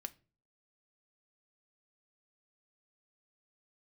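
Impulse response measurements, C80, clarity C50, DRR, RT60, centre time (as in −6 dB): 27.5 dB, 21.5 dB, 6.5 dB, non-exponential decay, 3 ms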